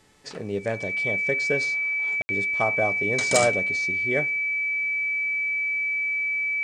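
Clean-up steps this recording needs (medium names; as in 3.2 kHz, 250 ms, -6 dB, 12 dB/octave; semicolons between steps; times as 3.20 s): clip repair -7.5 dBFS; de-hum 433.7 Hz, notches 27; band-stop 2.3 kHz, Q 30; room tone fill 2.22–2.29 s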